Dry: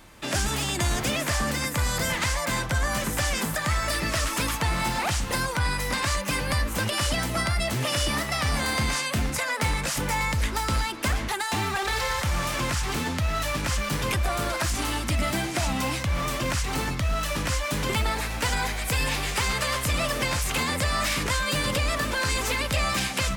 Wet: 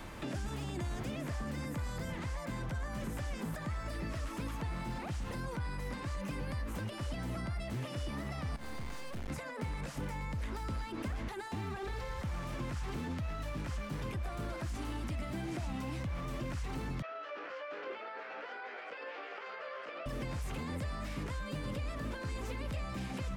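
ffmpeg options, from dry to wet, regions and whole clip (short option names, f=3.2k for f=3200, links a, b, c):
-filter_complex "[0:a]asettb=1/sr,asplit=3[a][b][c];[a]atrim=end=8.564[d];[b]atrim=start=8.56:end=9.3,asetpts=PTS-STARTPTS,afade=t=in:d=0.004:c=qsin,afade=t=out:st=0.736:d=0.004:c=qsin,aeval=exprs='(tanh(22.4*val(0)+0.75)-tanh(0.75))/22.4':c=same,aeval=exprs='max(val(0),0)':c=same[e];[c]atrim=start=9.296[f];[d][e]acrossfade=d=0.004:c1=hsin:c2=qsin[g];[g][f]acrossfade=d=0.004:c1=qsin:c2=hsin,asettb=1/sr,asplit=3[h][i][j];[h]atrim=end=17.024[k];[i]atrim=start=17.02:end=20.06,asetpts=PTS-STARTPTS,afade=t=in:d=0.004:c=qsin,afade=t=out:st=3.036:d=0.004:c=qsin,highpass=f=480:w=0.5412,highpass=f=480:w=1.3066,equalizer=f=950:t=q:w=4:g=-6,equalizer=f=1.4k:t=q:w=4:g=7,equalizer=f=3.8k:t=q:w=4:g=-7,lowpass=f=4k:w=0.5412,lowpass=f=4k:w=1.3066,asplit=2[l][m];[m]adelay=17,volume=-4.5dB[n];[l][n]amix=inputs=2:normalize=0,atrim=end_sample=134064[o];[j]atrim=start=20.056[p];[k][o]acrossfade=d=0.004:c1=hsin:c2=qsin[q];[q][p]acrossfade=d=0.004:c1=qsin:c2=hsin,alimiter=level_in=5dB:limit=-24dB:level=0:latency=1:release=83,volume=-5dB,highshelf=f=3.5k:g=-9,acrossover=split=420|1100[r][s][t];[r]acompressor=threshold=-42dB:ratio=4[u];[s]acompressor=threshold=-57dB:ratio=4[v];[t]acompressor=threshold=-56dB:ratio=4[w];[u][v][w]amix=inputs=3:normalize=0,volume=5.5dB"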